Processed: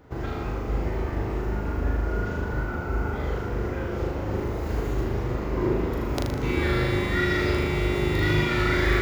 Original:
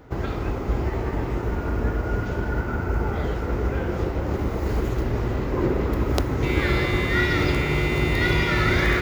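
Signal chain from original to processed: flutter echo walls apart 6.7 m, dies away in 0.73 s; gain -5.5 dB

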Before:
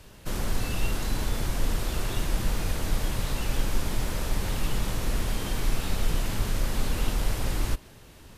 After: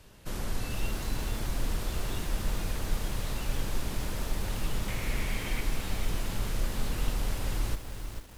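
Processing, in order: 4.88–5.61 bell 2200 Hz +12.5 dB 0.43 oct; lo-fi delay 0.443 s, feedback 35%, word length 7-bit, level -7.5 dB; gain -5 dB

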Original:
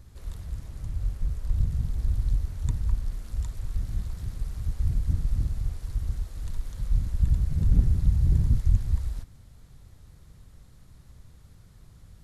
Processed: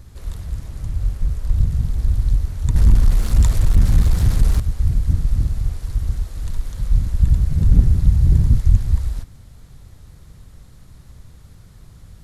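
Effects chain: 2.75–4.6 sample leveller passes 3; gain +8 dB

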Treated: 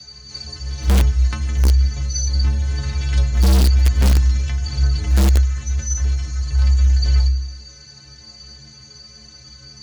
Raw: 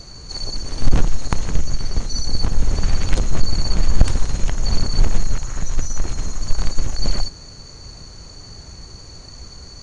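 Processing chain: band shelf 2900 Hz +9 dB 2.5 oct; frequency shift +60 Hz; metallic resonator 64 Hz, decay 0.77 s, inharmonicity 0.03; in parallel at -8 dB: wrapped overs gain 10 dB; on the sum: reverse echo 66 ms -22 dB

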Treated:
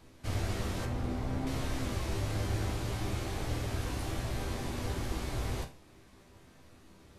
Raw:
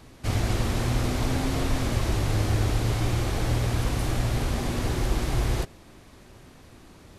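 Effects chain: 0.85–1.47 high shelf 2100 Hz -11.5 dB; resonator bank C2 major, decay 0.29 s; gain +2.5 dB

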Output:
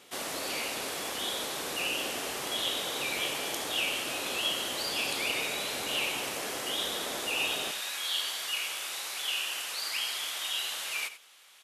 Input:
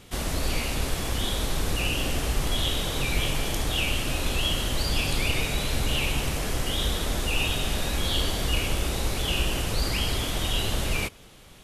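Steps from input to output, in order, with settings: HPF 390 Hz 12 dB/oct, from 7.71 s 1200 Hz; echo 88 ms -13 dB; gain -2.5 dB

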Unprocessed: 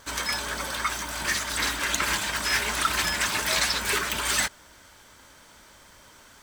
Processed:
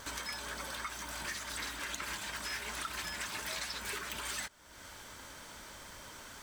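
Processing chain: compressor 3:1, threshold -46 dBFS, peak gain reduction 19.5 dB; gain +2.5 dB

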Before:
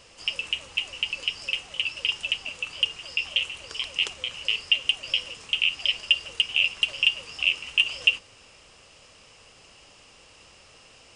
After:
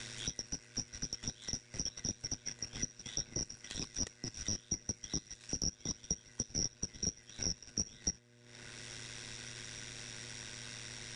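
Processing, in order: four-band scrambler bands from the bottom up 3142; transient shaper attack -8 dB, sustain -12 dB; ring modulator 53 Hz; buzz 120 Hz, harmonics 5, -64 dBFS -5 dB/oct; three-band squash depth 70%; gain -4.5 dB

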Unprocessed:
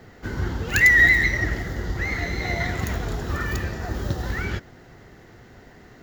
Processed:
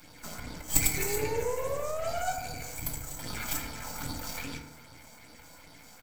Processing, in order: formant shift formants +2 st; spectral gain 0.62–3.18, 220–5700 Hz -10 dB; comb 0.9 ms, depth 76%; compressor 2.5:1, threshold -27 dBFS, peak gain reduction 9.5 dB; phaser stages 6, 2.5 Hz, lowest notch 110–2300 Hz; RIAA curve recording; formant-preserving pitch shift -6.5 st; painted sound rise, 0.97–2.33, 380–760 Hz -31 dBFS; half-wave rectifier; FDN reverb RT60 1.2 s, low-frequency decay 0.75×, high-frequency decay 0.35×, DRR 1 dB

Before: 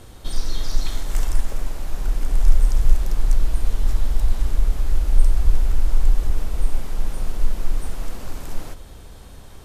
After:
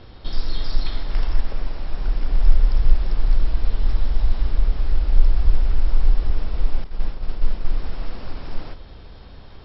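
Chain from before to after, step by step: 6.84–7.65 expander -15 dBFS; MP2 48 kbps 44100 Hz

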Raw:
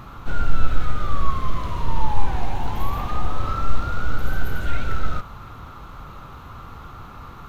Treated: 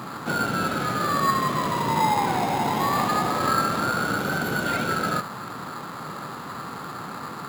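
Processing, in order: HPF 160 Hz 24 dB/oct; in parallel at -4 dB: sample-and-hold 15×; on the sum: gain +4.5 dB

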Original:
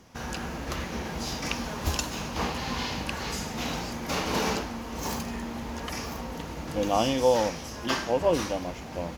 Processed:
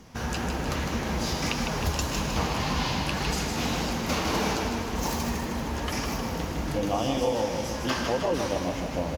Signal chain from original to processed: low shelf 190 Hz +4 dB; compressor, threshold -27 dBFS, peak gain reduction 11 dB; on a send: feedback echo 0.156 s, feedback 58%, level -5.5 dB; on the sum: flange 1.8 Hz, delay 3.5 ms, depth 9.8 ms, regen -45%; gain +7 dB

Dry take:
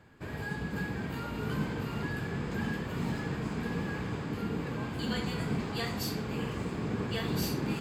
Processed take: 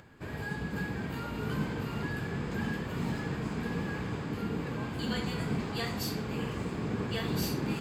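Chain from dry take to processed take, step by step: upward compressor, threshold -51 dBFS

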